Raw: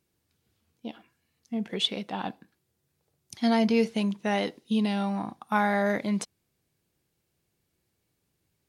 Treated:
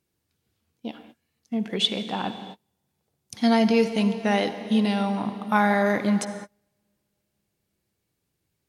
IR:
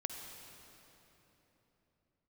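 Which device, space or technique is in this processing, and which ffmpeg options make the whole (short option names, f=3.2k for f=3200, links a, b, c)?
keyed gated reverb: -filter_complex "[0:a]asplit=3[a][b][c];[1:a]atrim=start_sample=2205[d];[b][d]afir=irnorm=-1:irlink=0[e];[c]apad=whole_len=383001[f];[e][f]sidechaingate=range=-36dB:threshold=-59dB:ratio=16:detection=peak,volume=0.5dB[g];[a][g]amix=inputs=2:normalize=0,volume=-1.5dB"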